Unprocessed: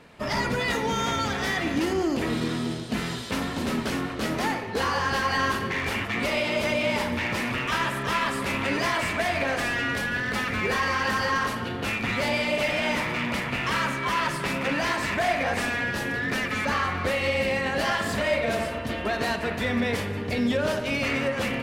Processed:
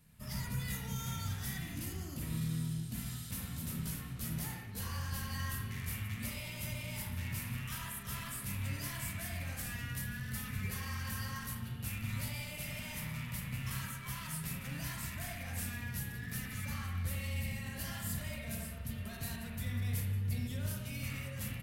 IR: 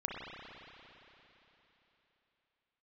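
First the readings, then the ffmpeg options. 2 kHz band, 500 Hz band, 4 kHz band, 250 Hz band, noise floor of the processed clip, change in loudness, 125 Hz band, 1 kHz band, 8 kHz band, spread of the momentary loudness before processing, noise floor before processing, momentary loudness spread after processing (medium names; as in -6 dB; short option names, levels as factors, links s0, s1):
-19.0 dB, -26.5 dB, -15.5 dB, -15.0 dB, -45 dBFS, -13.5 dB, -3.0 dB, -22.5 dB, -4.5 dB, 4 LU, -32 dBFS, 4 LU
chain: -filter_complex "[0:a]firequalizer=gain_entry='entry(130,0);entry(340,-24);entry(1300,-18);entry(12000,12)':delay=0.05:min_phase=1[s0];[1:a]atrim=start_sample=2205,atrim=end_sample=6615[s1];[s0][s1]afir=irnorm=-1:irlink=0,volume=0.631"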